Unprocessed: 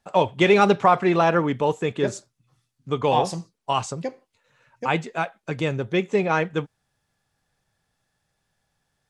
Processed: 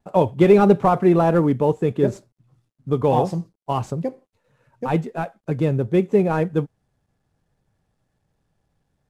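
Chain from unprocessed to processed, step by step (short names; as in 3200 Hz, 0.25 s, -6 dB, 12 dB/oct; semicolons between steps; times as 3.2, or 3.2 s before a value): CVSD 64 kbps; tilt shelf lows +9 dB, about 940 Hz; gain -1.5 dB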